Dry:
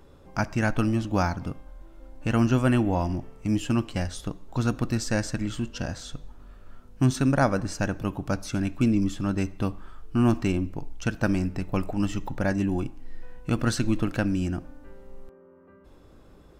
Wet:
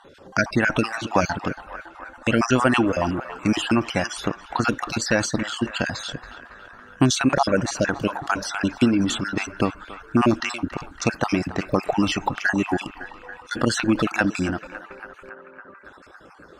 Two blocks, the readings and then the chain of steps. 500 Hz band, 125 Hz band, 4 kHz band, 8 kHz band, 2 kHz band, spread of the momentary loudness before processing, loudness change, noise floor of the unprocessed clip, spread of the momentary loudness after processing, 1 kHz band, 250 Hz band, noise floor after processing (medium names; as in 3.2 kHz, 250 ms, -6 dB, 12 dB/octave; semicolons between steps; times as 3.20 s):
+5.5 dB, -2.5 dB, +10.5 dB, +7.5 dB, +9.5 dB, 11 LU, +3.5 dB, -53 dBFS, 18 LU, +7.5 dB, +3.0 dB, -48 dBFS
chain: random holes in the spectrogram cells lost 37%; reverb removal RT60 0.57 s; high-pass 470 Hz 6 dB/octave; in parallel at +2 dB: peak limiter -24.5 dBFS, peak gain reduction 11.5 dB; on the sum: transient shaper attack +5 dB, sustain +9 dB; distance through air 59 m; band-passed feedback delay 279 ms, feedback 80%, band-pass 1.3 kHz, level -13 dB; trim +4 dB